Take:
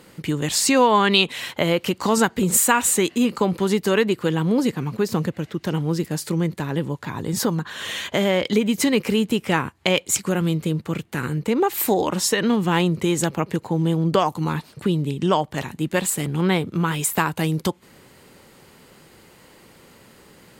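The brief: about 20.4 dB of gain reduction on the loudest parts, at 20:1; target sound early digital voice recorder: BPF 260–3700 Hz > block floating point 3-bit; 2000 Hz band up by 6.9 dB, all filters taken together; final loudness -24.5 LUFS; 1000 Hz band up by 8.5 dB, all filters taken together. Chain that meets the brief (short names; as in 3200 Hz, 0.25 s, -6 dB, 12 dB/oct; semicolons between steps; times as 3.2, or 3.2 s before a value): bell 1000 Hz +8.5 dB; bell 2000 Hz +6.5 dB; compressor 20:1, threshold -25 dBFS; BPF 260–3700 Hz; block floating point 3-bit; gain +7 dB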